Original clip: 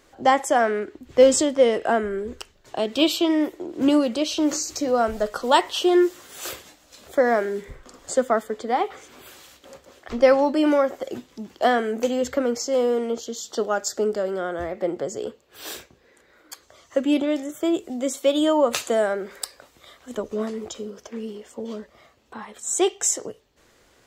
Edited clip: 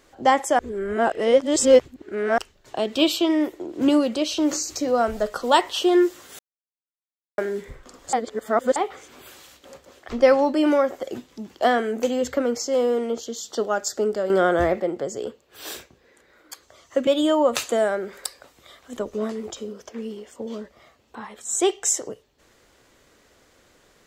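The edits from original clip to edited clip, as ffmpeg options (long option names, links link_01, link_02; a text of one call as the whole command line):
ffmpeg -i in.wav -filter_complex "[0:a]asplit=10[link_01][link_02][link_03][link_04][link_05][link_06][link_07][link_08][link_09][link_10];[link_01]atrim=end=0.592[link_11];[link_02]atrim=start=0.588:end=2.382,asetpts=PTS-STARTPTS,areverse[link_12];[link_03]atrim=start=2.378:end=6.39,asetpts=PTS-STARTPTS,afade=type=out:start_time=4.008:duration=0.004:curve=hsin[link_13];[link_04]atrim=start=6.39:end=7.38,asetpts=PTS-STARTPTS,volume=0[link_14];[link_05]atrim=start=7.38:end=8.132,asetpts=PTS-STARTPTS,afade=type=in:duration=0.004:curve=hsin[link_15];[link_06]atrim=start=8.128:end=8.762,asetpts=PTS-STARTPTS,areverse[link_16];[link_07]atrim=start=8.758:end=14.302[link_17];[link_08]atrim=start=14.298:end=14.802,asetpts=PTS-STARTPTS,volume=9dB[link_18];[link_09]atrim=start=14.798:end=17.072[link_19];[link_10]atrim=start=18.248[link_20];[link_11][link_12]acrossfade=duration=0.004:curve1=hsin:curve2=hsin[link_21];[link_13][link_14][link_15]concat=n=3:v=0:a=1[link_22];[link_21][link_22]acrossfade=duration=0.004:curve1=hsin:curve2=hsin[link_23];[link_23][link_16]acrossfade=duration=0.004:curve1=hsin:curve2=hsin[link_24];[link_24][link_17]acrossfade=duration=0.004:curve1=hsin:curve2=hsin[link_25];[link_25][link_18]acrossfade=duration=0.004:curve1=hsin:curve2=hsin[link_26];[link_26][link_19]acrossfade=duration=0.004:curve1=hsin:curve2=hsin[link_27];[link_27][link_20]acrossfade=duration=0.004:curve1=hsin:curve2=hsin" out.wav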